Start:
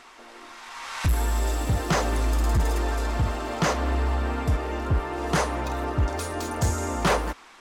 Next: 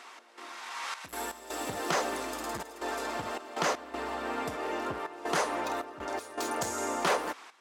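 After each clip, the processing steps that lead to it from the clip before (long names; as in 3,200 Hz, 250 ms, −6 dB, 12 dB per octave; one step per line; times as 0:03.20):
downward compressor 2 to 1, threshold −26 dBFS, peak gain reduction 4.5 dB
high-pass filter 330 Hz 12 dB per octave
gate pattern "x.xxx.x.xxxxx" 80 BPM −12 dB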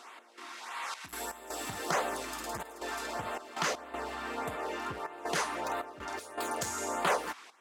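dynamic equaliser 300 Hz, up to −5 dB, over −49 dBFS, Q 1.3
auto-filter notch sine 1.6 Hz 490–6,000 Hz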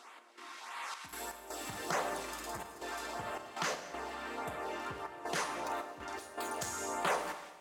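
four-comb reverb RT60 1.3 s, combs from 29 ms, DRR 8.5 dB
level −4 dB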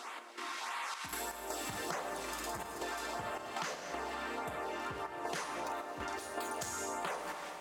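downward compressor 6 to 1, threshold −46 dBFS, peak gain reduction 17 dB
level +9 dB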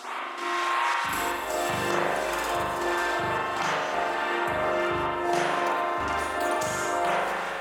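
spring reverb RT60 1.3 s, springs 40 ms, chirp 75 ms, DRR −7.5 dB
level +5.5 dB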